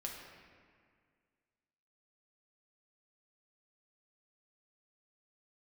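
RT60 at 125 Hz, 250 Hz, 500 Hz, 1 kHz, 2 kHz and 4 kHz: 2.1, 2.2, 2.0, 1.9, 1.9, 1.3 seconds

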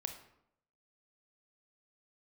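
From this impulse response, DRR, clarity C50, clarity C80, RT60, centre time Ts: 6.0 dB, 8.5 dB, 12.0 dB, 0.75 s, 15 ms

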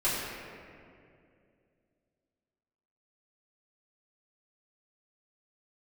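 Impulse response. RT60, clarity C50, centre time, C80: 2.4 s, −1.0 dB, 133 ms, 0.5 dB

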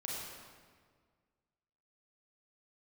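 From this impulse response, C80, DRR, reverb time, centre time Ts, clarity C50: 0.0 dB, −5.0 dB, 1.7 s, 112 ms, −2.0 dB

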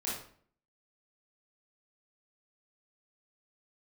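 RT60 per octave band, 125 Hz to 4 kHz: 0.60, 0.65, 0.55, 0.50, 0.45, 0.40 seconds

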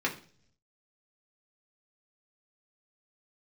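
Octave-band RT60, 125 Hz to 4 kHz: 1.0, 0.75, 0.55, 0.40, 0.40, 0.55 seconds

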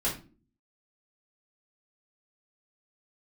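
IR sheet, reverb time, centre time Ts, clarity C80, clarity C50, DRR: 0.40 s, 26 ms, 15.0 dB, 8.0 dB, −8.0 dB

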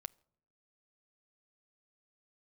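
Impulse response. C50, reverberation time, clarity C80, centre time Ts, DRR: 27.0 dB, 0.65 s, 29.5 dB, 1 ms, 16.5 dB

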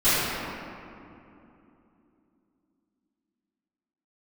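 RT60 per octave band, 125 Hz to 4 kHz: 3.4, 4.2, 3.1, 2.7, 2.1, 1.4 seconds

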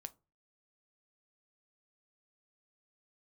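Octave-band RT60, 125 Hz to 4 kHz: 0.50, 0.35, 0.30, 0.30, 0.20, 0.15 seconds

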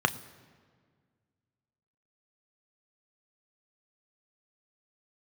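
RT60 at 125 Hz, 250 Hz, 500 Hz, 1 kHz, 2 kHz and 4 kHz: 2.2, 2.3, 1.9, 1.7, 1.5, 1.2 seconds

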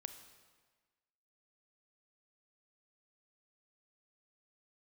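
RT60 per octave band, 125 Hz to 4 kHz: 1.3, 1.4, 1.4, 1.4, 1.4, 1.2 seconds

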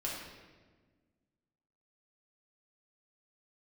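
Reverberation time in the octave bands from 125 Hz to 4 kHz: 2.0, 2.1, 1.6, 1.3, 1.2, 1.0 seconds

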